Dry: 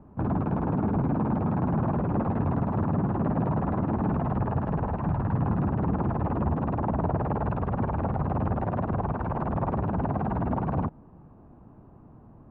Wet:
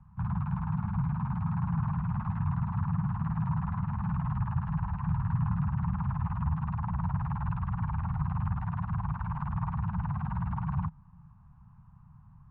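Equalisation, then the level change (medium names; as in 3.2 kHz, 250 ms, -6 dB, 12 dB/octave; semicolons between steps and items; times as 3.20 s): Chebyshev band-stop 170–970 Hz, order 3; distance through air 52 m; bass shelf 360 Hz +3 dB; -3.5 dB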